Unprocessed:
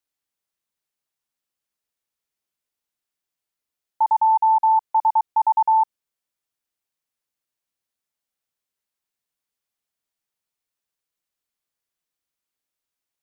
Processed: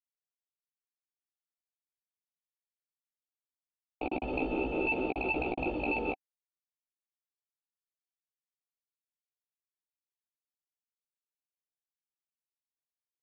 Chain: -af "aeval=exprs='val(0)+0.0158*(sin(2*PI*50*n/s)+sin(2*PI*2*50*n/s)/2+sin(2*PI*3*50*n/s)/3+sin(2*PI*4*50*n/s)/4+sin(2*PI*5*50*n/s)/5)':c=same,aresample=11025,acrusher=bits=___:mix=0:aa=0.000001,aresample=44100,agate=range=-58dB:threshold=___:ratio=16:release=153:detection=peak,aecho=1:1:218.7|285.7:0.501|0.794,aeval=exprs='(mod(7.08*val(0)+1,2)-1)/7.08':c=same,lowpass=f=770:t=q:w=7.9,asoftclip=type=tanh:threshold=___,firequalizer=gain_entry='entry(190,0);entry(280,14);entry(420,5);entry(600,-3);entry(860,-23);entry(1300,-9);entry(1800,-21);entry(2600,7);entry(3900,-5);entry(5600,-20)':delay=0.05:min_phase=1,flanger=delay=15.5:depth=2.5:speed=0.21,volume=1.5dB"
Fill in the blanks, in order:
4, -21dB, -11.5dB